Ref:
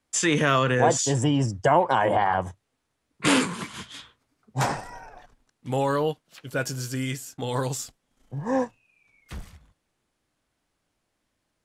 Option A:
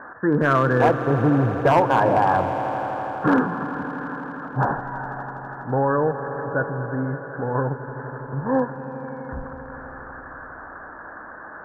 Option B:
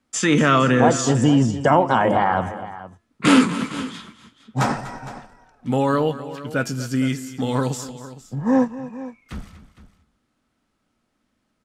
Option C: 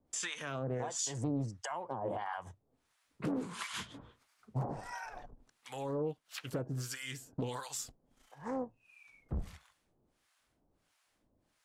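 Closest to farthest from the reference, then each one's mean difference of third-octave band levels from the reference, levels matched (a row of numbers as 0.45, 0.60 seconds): B, C, A; 4.0, 8.0, 11.5 decibels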